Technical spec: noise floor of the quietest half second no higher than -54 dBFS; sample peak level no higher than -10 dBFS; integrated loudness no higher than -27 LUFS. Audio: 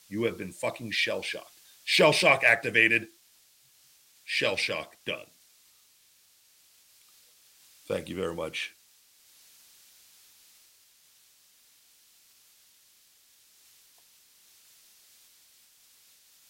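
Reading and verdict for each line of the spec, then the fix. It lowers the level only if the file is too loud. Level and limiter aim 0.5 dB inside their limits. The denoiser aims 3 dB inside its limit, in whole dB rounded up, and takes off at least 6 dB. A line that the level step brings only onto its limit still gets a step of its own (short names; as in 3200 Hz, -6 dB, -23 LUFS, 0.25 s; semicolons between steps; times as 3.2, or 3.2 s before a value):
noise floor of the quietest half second -63 dBFS: OK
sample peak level -6.5 dBFS: fail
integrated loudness -26.5 LUFS: fail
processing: gain -1 dB; limiter -10.5 dBFS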